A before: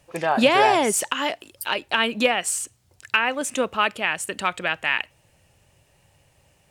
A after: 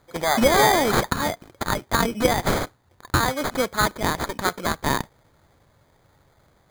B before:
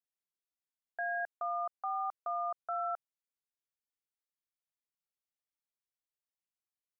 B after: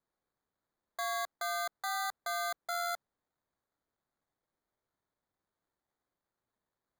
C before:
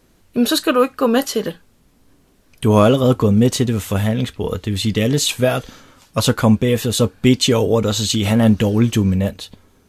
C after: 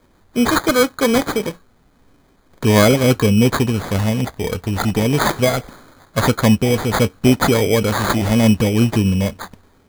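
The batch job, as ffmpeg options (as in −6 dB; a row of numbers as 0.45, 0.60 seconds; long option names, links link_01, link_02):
-af "highshelf=frequency=6800:gain=6.5,acrusher=samples=16:mix=1:aa=0.000001"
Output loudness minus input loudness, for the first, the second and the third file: 0.0, +1.0, 0.0 LU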